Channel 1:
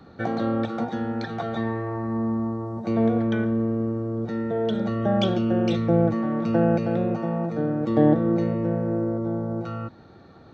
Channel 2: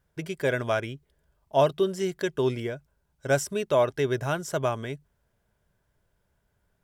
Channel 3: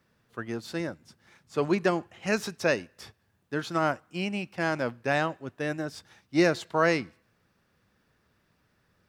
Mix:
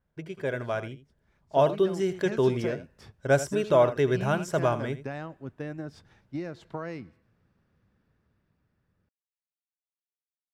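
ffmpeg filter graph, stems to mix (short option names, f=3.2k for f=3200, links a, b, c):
-filter_complex "[1:a]aemphasis=mode=reproduction:type=75kf,volume=-4.5dB,asplit=2[a][b];[b]volume=-14dB[c];[2:a]lowpass=f=2.5k:p=1,lowshelf=f=290:g=10,acompressor=threshold=-27dB:ratio=12,volume=-11dB,afade=t=in:st=1.1:d=0.74:silence=0.281838[d];[c]aecho=0:1:82:1[e];[a][d][e]amix=inputs=3:normalize=0,dynaudnorm=f=610:g=5:m=6.5dB,adynamicequalizer=threshold=0.00282:dfrequency=5800:dqfactor=0.7:tfrequency=5800:tqfactor=0.7:attack=5:release=100:ratio=0.375:range=3.5:mode=boostabove:tftype=highshelf"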